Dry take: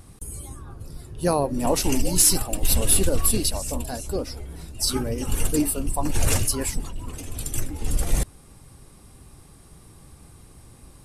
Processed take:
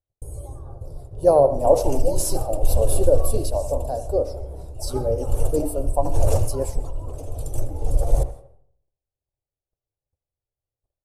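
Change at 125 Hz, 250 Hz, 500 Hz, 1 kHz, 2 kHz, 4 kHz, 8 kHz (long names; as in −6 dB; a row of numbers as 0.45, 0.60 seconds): +2.5 dB, −4.0 dB, +9.0 dB, +4.0 dB, below −15 dB, −12.0 dB, −10.0 dB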